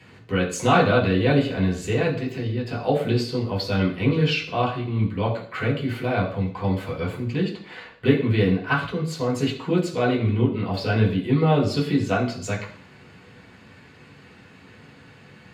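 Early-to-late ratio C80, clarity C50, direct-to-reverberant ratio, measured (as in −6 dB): 11.5 dB, 9.0 dB, −5.0 dB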